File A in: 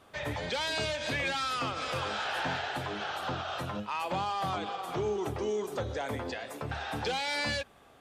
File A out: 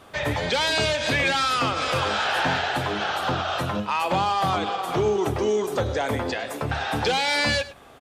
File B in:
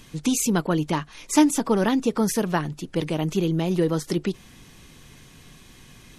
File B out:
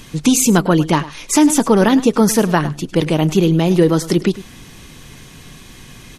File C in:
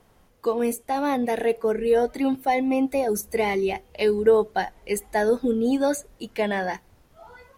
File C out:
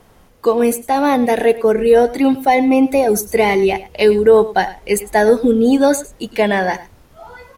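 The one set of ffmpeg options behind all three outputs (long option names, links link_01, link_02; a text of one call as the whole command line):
ffmpeg -i in.wav -af "aecho=1:1:103:0.141,alimiter=level_in=10.5dB:limit=-1dB:release=50:level=0:latency=1,volume=-1dB" out.wav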